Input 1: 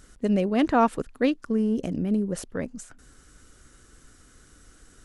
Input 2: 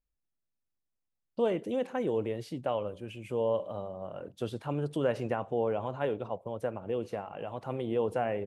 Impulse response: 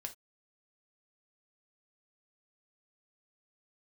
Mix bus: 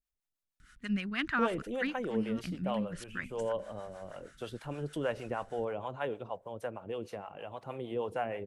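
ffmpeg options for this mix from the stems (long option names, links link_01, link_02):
-filter_complex "[0:a]firequalizer=gain_entry='entry(170,0);entry(510,-22);entry(1400,5);entry(6300,-8)':delay=0.05:min_phase=1,adelay=600,volume=-2.5dB,asplit=2[link_01][link_02];[link_02]volume=-23.5dB[link_03];[1:a]volume=-0.5dB[link_04];[link_03]aecho=0:1:943:1[link_05];[link_01][link_04][link_05]amix=inputs=3:normalize=0,tiltshelf=frequency=720:gain=-3,acrossover=split=510[link_06][link_07];[link_06]aeval=exprs='val(0)*(1-0.7/2+0.7/2*cos(2*PI*6.4*n/s))':channel_layout=same[link_08];[link_07]aeval=exprs='val(0)*(1-0.7/2-0.7/2*cos(2*PI*6.4*n/s))':channel_layout=same[link_09];[link_08][link_09]amix=inputs=2:normalize=0"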